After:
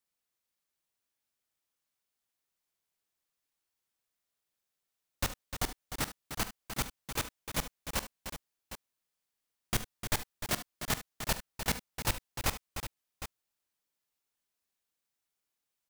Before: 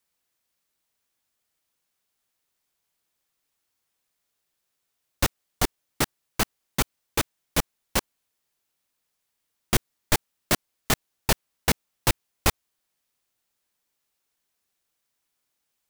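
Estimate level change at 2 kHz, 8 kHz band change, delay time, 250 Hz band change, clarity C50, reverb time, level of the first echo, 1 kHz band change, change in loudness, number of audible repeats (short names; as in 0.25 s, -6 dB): -8.0 dB, -8.0 dB, 43 ms, -10.0 dB, none, none, -16.0 dB, -8.5 dB, -9.0 dB, 4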